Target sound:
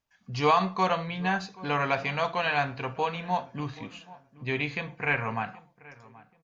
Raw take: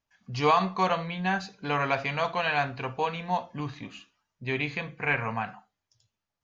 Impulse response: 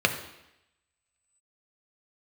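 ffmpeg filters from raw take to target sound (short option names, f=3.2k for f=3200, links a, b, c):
-filter_complex "[0:a]asplit=2[a][b];[b]adelay=779,lowpass=f=1.7k:p=1,volume=-20dB,asplit=2[c][d];[d]adelay=779,lowpass=f=1.7k:p=1,volume=0.34,asplit=2[e][f];[f]adelay=779,lowpass=f=1.7k:p=1,volume=0.34[g];[a][c][e][g]amix=inputs=4:normalize=0"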